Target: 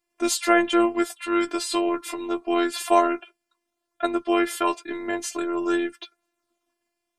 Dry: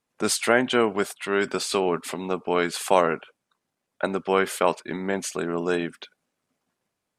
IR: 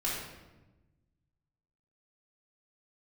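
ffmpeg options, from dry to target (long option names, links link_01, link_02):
-af "afftfilt=real='hypot(re,im)*cos(PI*b)':imag='0':win_size=512:overlap=0.75,flanger=delay=8.3:depth=1.4:regen=-28:speed=0.29:shape=sinusoidal,volume=7dB"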